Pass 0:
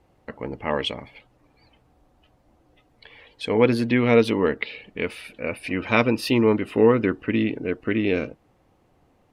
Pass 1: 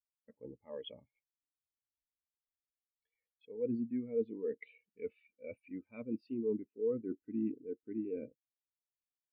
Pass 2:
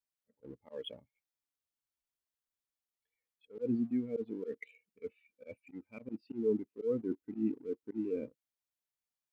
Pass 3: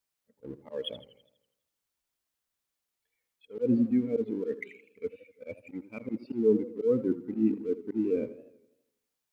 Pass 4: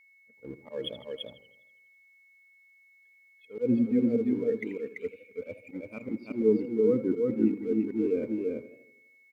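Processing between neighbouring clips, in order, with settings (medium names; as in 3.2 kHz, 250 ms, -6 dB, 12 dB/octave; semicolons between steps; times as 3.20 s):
reverse; compression 8:1, threshold -28 dBFS, peak gain reduction 16.5 dB; reverse; spectral contrast expander 2.5:1; trim -7 dB
slow attack 108 ms; in parallel at -4.5 dB: crossover distortion -59.5 dBFS
modulated delay 82 ms, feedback 54%, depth 136 cents, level -15 dB; trim +7.5 dB
delay 337 ms -3 dB; whistle 2.2 kHz -58 dBFS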